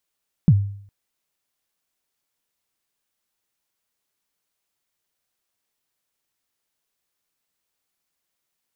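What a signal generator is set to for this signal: kick drum length 0.41 s, from 190 Hz, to 100 Hz, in 51 ms, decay 0.60 s, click off, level -7 dB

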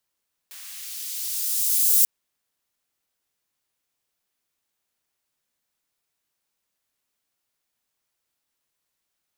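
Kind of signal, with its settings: swept filtered noise white, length 1.54 s highpass, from 1000 Hz, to 8500 Hz, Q 0.71, linear, gain ramp +28 dB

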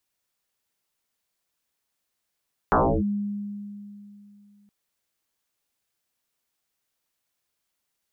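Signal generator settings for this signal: FM tone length 1.97 s, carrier 204 Hz, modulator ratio 0.58, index 11, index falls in 0.31 s linear, decay 2.89 s, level -15 dB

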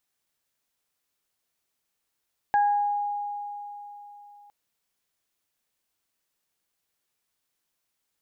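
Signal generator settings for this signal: additive tone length 1.96 s, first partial 821 Hz, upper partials -10 dB, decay 3.64 s, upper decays 0.63 s, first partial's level -17.5 dB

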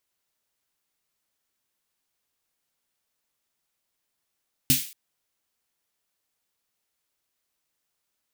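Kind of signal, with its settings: snare drum length 0.23 s, tones 140 Hz, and 260 Hz, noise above 2300 Hz, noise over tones 3 dB, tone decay 0.18 s, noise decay 0.43 s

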